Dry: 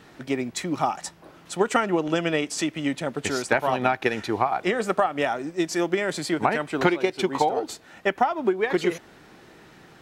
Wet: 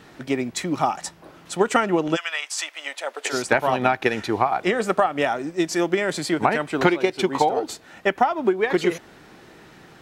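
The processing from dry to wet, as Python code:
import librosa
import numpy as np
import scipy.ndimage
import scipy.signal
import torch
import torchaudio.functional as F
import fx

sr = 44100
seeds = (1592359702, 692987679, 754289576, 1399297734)

y = fx.highpass(x, sr, hz=fx.line((2.15, 1100.0), (3.32, 450.0)), slope=24, at=(2.15, 3.32), fade=0.02)
y = y * 10.0 ** (2.5 / 20.0)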